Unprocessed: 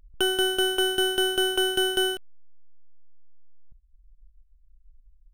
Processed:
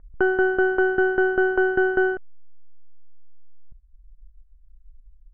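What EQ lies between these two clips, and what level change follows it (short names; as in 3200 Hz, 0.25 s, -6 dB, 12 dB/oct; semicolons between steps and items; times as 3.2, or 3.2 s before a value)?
steep low-pass 1900 Hz 48 dB/oct; +6.0 dB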